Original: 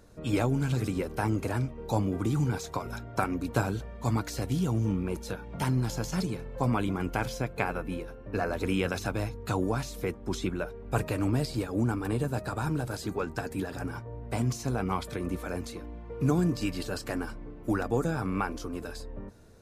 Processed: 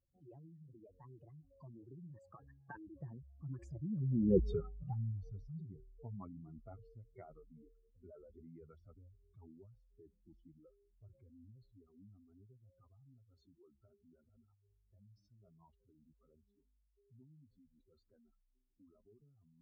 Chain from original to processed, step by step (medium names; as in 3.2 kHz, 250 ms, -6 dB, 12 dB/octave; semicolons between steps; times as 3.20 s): spectral contrast enhancement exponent 3; Doppler pass-by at 4.39 s, 52 m/s, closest 3.7 m; trim +7 dB